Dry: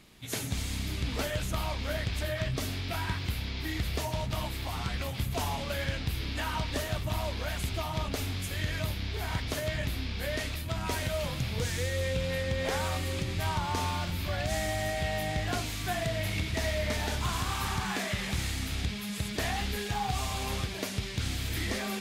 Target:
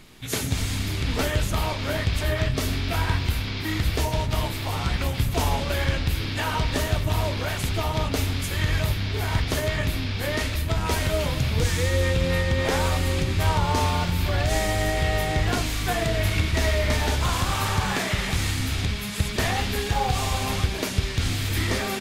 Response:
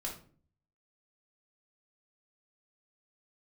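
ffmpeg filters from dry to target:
-filter_complex "[0:a]asplit=2[link_01][link_02];[link_02]adelay=250,highpass=300,lowpass=3400,asoftclip=type=hard:threshold=-29.5dB,volume=-18dB[link_03];[link_01][link_03]amix=inputs=2:normalize=0,asplit=2[link_04][link_05];[1:a]atrim=start_sample=2205,asetrate=61740,aresample=44100,lowshelf=frequency=340:gain=6.5[link_06];[link_05][link_06]afir=irnorm=-1:irlink=0,volume=-8.5dB[link_07];[link_04][link_07]amix=inputs=2:normalize=0,asplit=3[link_08][link_09][link_10];[link_09]asetrate=22050,aresample=44100,atempo=2,volume=-12dB[link_11];[link_10]asetrate=29433,aresample=44100,atempo=1.49831,volume=-11dB[link_12];[link_08][link_11][link_12]amix=inputs=3:normalize=0,volume=5dB"

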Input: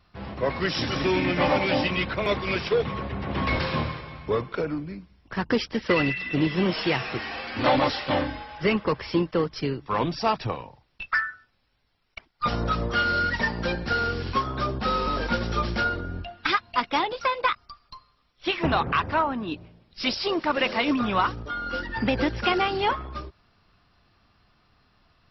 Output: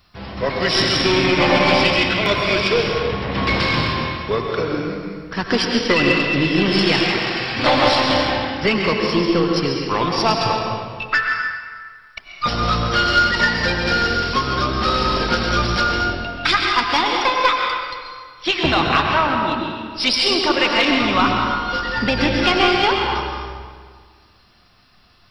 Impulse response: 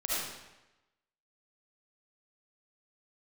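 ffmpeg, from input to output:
-filter_complex "[0:a]crystalizer=i=3:c=0,asplit=2[link_01][link_02];[1:a]atrim=start_sample=2205,asetrate=24255,aresample=44100[link_03];[link_02][link_03]afir=irnorm=-1:irlink=0,volume=-8dB[link_04];[link_01][link_04]amix=inputs=2:normalize=0,aeval=exprs='0.75*(cos(1*acos(clip(val(0)/0.75,-1,1)))-cos(1*PI/2))+0.075*(cos(2*acos(clip(val(0)/0.75,-1,1)))-cos(2*PI/2))+0.0168*(cos(6*acos(clip(val(0)/0.75,-1,1)))-cos(6*PI/2))+0.00531*(cos(8*acos(clip(val(0)/0.75,-1,1)))-cos(8*PI/2))':channel_layout=same"

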